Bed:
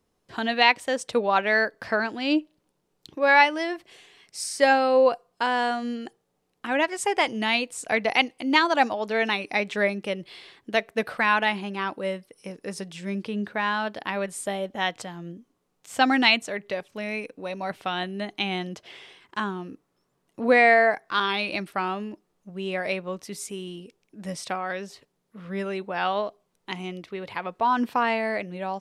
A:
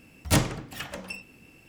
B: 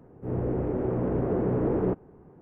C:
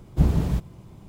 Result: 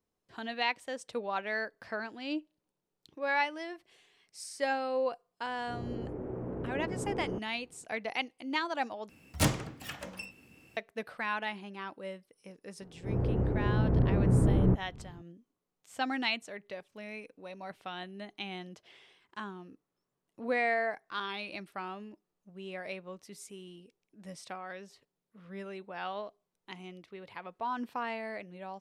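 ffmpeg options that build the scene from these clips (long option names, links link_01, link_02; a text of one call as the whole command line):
ffmpeg -i bed.wav -i cue0.wav -i cue1.wav -filter_complex "[2:a]asplit=2[link_01][link_02];[0:a]volume=-12.5dB[link_03];[1:a]highpass=46[link_04];[link_02]asubboost=boost=9.5:cutoff=170[link_05];[link_03]asplit=2[link_06][link_07];[link_06]atrim=end=9.094[link_08];[link_04]atrim=end=1.68,asetpts=PTS-STARTPTS,volume=-5dB[link_09];[link_07]atrim=start=10.766[link_10];[link_01]atrim=end=2.41,asetpts=PTS-STARTPTS,volume=-11dB,afade=type=in:duration=0.004:curve=hsin,afade=type=out:start_time=2.406:duration=0.004:curve=hsin,adelay=240345S[link_11];[link_05]atrim=end=2.41,asetpts=PTS-STARTPTS,volume=-4dB,afade=type=in:duration=0.004:curve=hsin,afade=type=out:start_time=2.406:duration=0.004:curve=hsin,adelay=12810[link_12];[link_08][link_09]acrossfade=duration=0.004:curve1=hsin:curve2=hsin[link_13];[link_13][link_10]acrossfade=duration=0.004:curve1=hsin:curve2=hsin[link_14];[link_14][link_11][link_12]amix=inputs=3:normalize=0" out.wav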